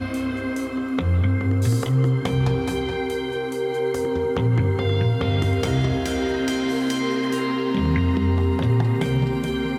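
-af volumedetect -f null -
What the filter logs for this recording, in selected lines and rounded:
mean_volume: -21.3 dB
max_volume: -8.5 dB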